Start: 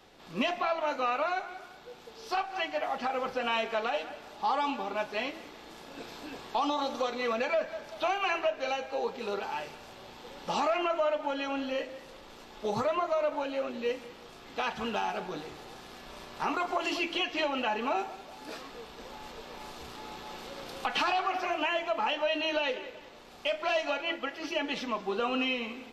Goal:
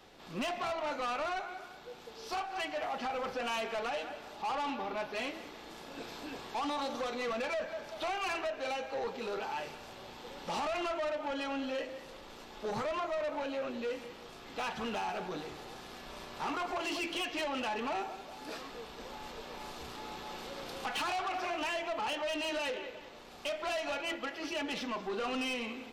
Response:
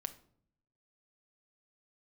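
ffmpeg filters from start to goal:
-filter_complex "[0:a]asettb=1/sr,asplit=3[a][b][c];[a]atrim=end=4.424[d];[b]atrim=start=4.42:end=5.16,asetpts=PTS-STARTPTS,afade=t=in:d=0.004:c=qsin,afade=t=out:st=0.736:d=0.004:c=qsin,equalizer=f=8k:t=o:w=0.65:g=-12[e];[c]atrim=start=5.156[f];[d][e]acrossfade=d=0.004:c1=hsin:c2=qsin[g];[g][f]acrossfade=d=0.004:c1=qsin:c2=hsin,asoftclip=type=tanh:threshold=-31.5dB"

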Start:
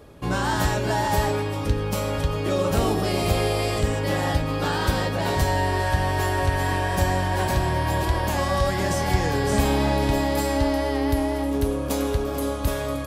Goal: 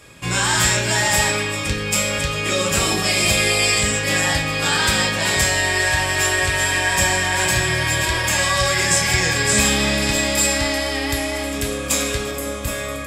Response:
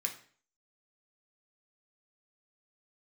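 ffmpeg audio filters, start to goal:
-filter_complex "[0:a]asetnsamples=n=441:p=0,asendcmd='12.31 equalizer g 6',equalizer=f=4.6k:w=0.34:g=14[a];[1:a]atrim=start_sample=2205[b];[a][b]afir=irnorm=-1:irlink=0"

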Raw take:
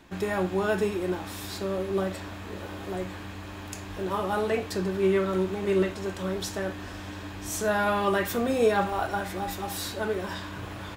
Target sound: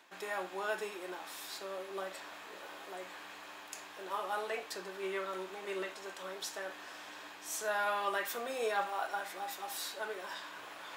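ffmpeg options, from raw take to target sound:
-af "highpass=650,areverse,acompressor=mode=upward:threshold=-38dB:ratio=2.5,areverse,volume=-6dB"

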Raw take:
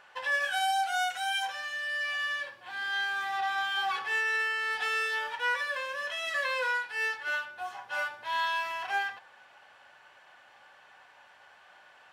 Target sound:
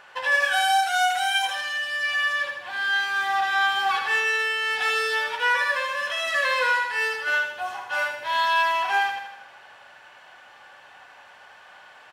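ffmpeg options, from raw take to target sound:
-af "aecho=1:1:79|158|237|316|395|474|553:0.473|0.256|0.138|0.0745|0.0402|0.0217|0.0117,volume=7dB"

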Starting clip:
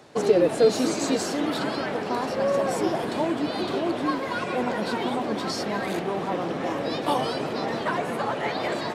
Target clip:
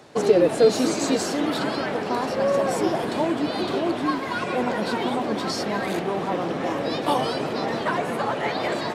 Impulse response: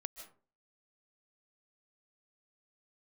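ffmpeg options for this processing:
-filter_complex "[0:a]asettb=1/sr,asplit=3[a][b][c];[a]atrim=end=3.944[d];[b]atrim=start=3.94:end=4.42,asetpts=PTS-STARTPTS,afade=t=in:d=0.004:c=qsin,afade=t=out:st=0.476:d=0.004:c=qsin,equalizer=f=520:t=o:w=0.24:g=-9[e];[c]atrim=start=4.416[f];[d][e]acrossfade=d=0.004:c1=hsin:c2=qsin[g];[g][f]acrossfade=d=0.004:c1=qsin:c2=hsin,volume=2dB"

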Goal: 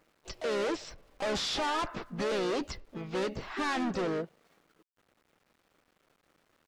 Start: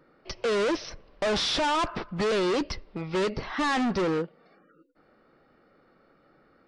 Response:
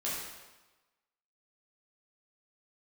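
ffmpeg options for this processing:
-filter_complex "[0:a]asplit=3[a][b][c];[b]asetrate=37084,aresample=44100,atempo=1.18921,volume=-17dB[d];[c]asetrate=58866,aresample=44100,atempo=0.749154,volume=-7dB[e];[a][d][e]amix=inputs=3:normalize=0,aeval=exprs='val(0)*gte(abs(val(0)),0.0015)':c=same,volume=-6.5dB"

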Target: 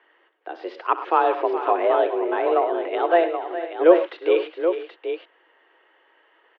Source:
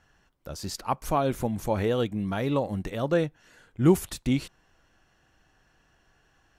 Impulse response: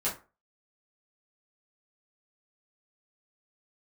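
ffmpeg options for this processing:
-filter_complex "[0:a]asettb=1/sr,asplit=3[a][b][c];[a]atrim=end=1.714[d];[b]atrim=start=1.71:end=2.9,asetpts=PTS-STARTPTS,afade=t=in:d=0.004:c=qsin,afade=t=out:st=1.186:d=0.004:c=qsin,highshelf=f=2.3k:g=-10[e];[c]atrim=start=2.896[f];[d][e]acrossfade=d=0.004:c1=hsin:c2=qsin[g];[g][f]acrossfade=d=0.004:c1=qsin:c2=hsin,aecho=1:1:64|103|116|416|482|777:0.178|0.178|0.126|0.237|0.141|0.398,highpass=f=180:t=q:w=0.5412,highpass=f=180:t=q:w=1.307,lowpass=f=3k:t=q:w=0.5176,lowpass=f=3k:t=q:w=0.7071,lowpass=f=3k:t=q:w=1.932,afreqshift=170,volume=6.5dB"

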